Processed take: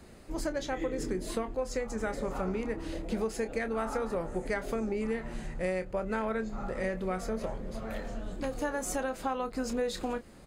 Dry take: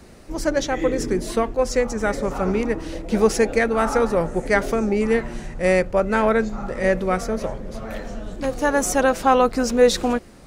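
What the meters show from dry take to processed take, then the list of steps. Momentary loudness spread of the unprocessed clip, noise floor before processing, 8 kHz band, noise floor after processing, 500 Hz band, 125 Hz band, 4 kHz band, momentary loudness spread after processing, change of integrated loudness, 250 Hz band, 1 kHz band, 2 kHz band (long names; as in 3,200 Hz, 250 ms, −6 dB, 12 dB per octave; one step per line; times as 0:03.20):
11 LU, −44 dBFS, −13.0 dB, −50 dBFS, −13.5 dB, −10.5 dB, −13.5 dB, 5 LU, −13.5 dB, −12.0 dB, −14.0 dB, −13.5 dB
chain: notch filter 5,700 Hz, Q 8.6
double-tracking delay 27 ms −10.5 dB
downward compressor 6 to 1, threshold −22 dBFS, peak gain reduction 12.5 dB
level −7 dB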